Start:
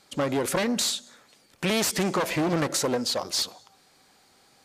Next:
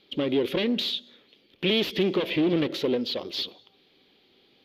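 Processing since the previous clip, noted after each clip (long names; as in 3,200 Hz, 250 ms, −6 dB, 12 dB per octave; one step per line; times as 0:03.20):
drawn EQ curve 130 Hz 0 dB, 390 Hz +10 dB, 730 Hz −5 dB, 1,500 Hz −6 dB, 3,300 Hz +12 dB, 8,400 Hz −29 dB, 12,000 Hz −9 dB
level −4.5 dB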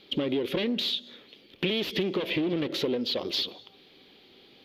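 downward compressor 5 to 1, threshold −32 dBFS, peak gain reduction 11.5 dB
level +6 dB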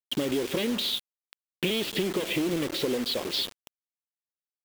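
bit reduction 6 bits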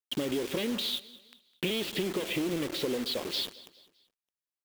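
repeating echo 205 ms, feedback 40%, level −19.5 dB
level −3.5 dB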